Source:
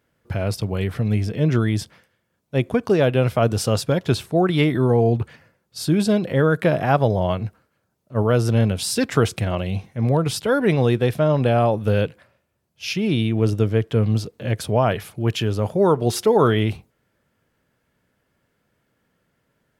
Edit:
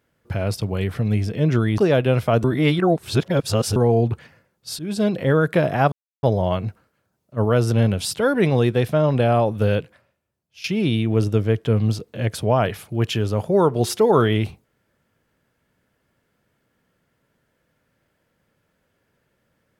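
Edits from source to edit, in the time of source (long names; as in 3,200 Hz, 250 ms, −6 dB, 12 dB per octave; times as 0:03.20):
0:01.78–0:02.87: remove
0:03.53–0:04.85: reverse
0:05.88–0:06.18: fade in, from −20.5 dB
0:07.01: splice in silence 0.31 s
0:08.89–0:10.37: remove
0:11.93–0:12.90: fade out, to −14 dB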